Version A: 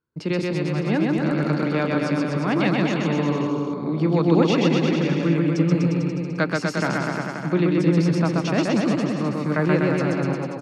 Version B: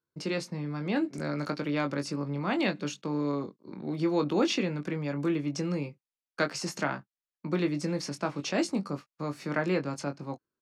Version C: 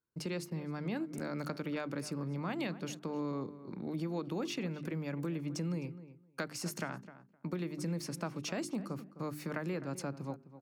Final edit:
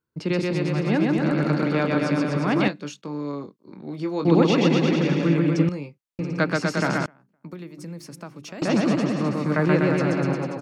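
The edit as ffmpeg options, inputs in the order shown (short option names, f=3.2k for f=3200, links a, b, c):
-filter_complex "[1:a]asplit=2[a][b];[0:a]asplit=4[c][d][e][f];[c]atrim=end=2.682[g];[a]atrim=start=2.678:end=4.252[h];[d]atrim=start=4.248:end=5.692[i];[b]atrim=start=5.688:end=6.192[j];[e]atrim=start=6.188:end=7.062[k];[2:a]atrim=start=7.058:end=8.622[l];[f]atrim=start=8.618[m];[g][h]acrossfade=d=0.004:c1=hsin:c2=hsin[n];[n][i]acrossfade=d=0.004:c1=hsin:c2=hsin[o];[o][j]acrossfade=d=0.004:c1=hsin:c2=hsin[p];[p][k]acrossfade=d=0.004:c1=hsin:c2=hsin[q];[q][l]acrossfade=d=0.004:c1=hsin:c2=hsin[r];[r][m]acrossfade=d=0.004:c1=hsin:c2=hsin"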